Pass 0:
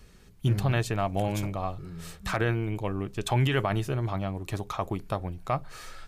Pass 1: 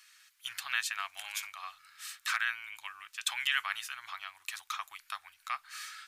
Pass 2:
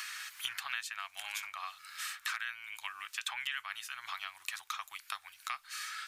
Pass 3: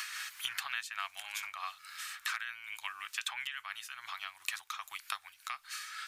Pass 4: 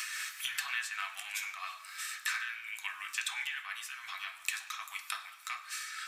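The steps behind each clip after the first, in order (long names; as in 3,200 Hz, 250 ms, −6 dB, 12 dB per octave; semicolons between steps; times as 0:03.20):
inverse Chebyshev high-pass filter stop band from 530 Hz, stop band 50 dB; level +3 dB
multiband upward and downward compressor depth 100%; level −3.5 dB
amplitude modulation by smooth noise, depth 65%; level +4 dB
convolution reverb RT60 0.95 s, pre-delay 3 ms, DRR 1.5 dB; level +1.5 dB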